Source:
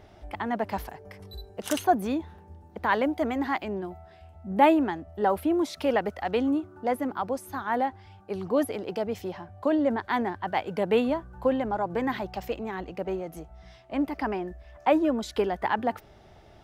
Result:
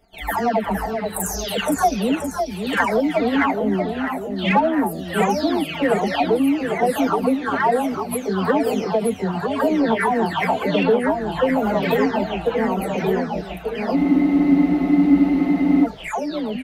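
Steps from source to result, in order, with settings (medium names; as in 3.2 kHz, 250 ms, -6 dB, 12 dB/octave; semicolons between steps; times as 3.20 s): delay that grows with frequency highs early, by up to 508 ms; gate -50 dBFS, range -19 dB; comb 4.4 ms, depth 69%; compression 3:1, threshold -26 dBFS, peak gain reduction 10.5 dB; in parallel at -11 dB: hard clipper -28.5 dBFS, distortion -10 dB; on the sum: ever faster or slower copies 448 ms, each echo -1 st, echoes 3, each echo -6 dB; spectral freeze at 13.98 s, 1.87 s; trim +8.5 dB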